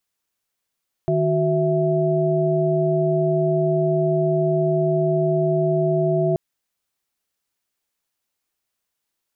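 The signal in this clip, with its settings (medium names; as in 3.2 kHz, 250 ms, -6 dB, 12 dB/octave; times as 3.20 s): chord D#3/F#4/E5 sine, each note -21 dBFS 5.28 s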